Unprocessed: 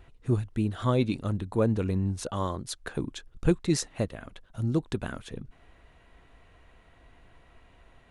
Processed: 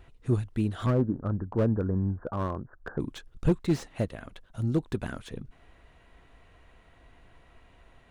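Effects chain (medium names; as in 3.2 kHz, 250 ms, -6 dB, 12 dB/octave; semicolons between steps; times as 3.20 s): 0.86–3.00 s: steep low-pass 1.7 kHz 96 dB/octave; slew-rate limiter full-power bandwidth 39 Hz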